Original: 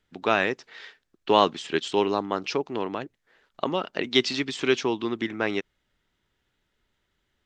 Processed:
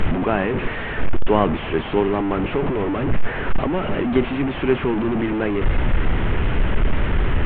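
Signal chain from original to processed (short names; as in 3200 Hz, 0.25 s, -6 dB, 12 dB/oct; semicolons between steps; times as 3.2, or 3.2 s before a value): delta modulation 16 kbps, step -20 dBFS; tilt -3 dB/oct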